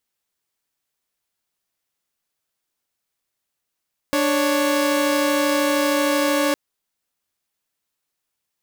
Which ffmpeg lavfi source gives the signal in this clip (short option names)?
-f lavfi -i "aevalsrc='0.133*((2*mod(293.66*t,1)-1)+(2*mod(554.37*t,1)-1))':d=2.41:s=44100"